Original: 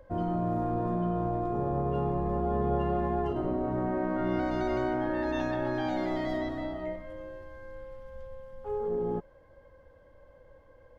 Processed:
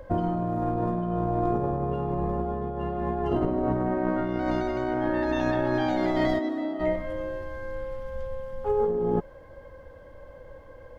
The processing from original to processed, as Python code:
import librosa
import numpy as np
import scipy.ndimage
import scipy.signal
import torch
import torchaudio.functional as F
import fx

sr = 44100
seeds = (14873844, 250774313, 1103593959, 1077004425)

y = fx.over_compress(x, sr, threshold_db=-32.0, ratio=-0.5)
y = fx.ladder_highpass(y, sr, hz=230.0, resonance_pct=45, at=(6.38, 6.79), fade=0.02)
y = y * librosa.db_to_amplitude(7.0)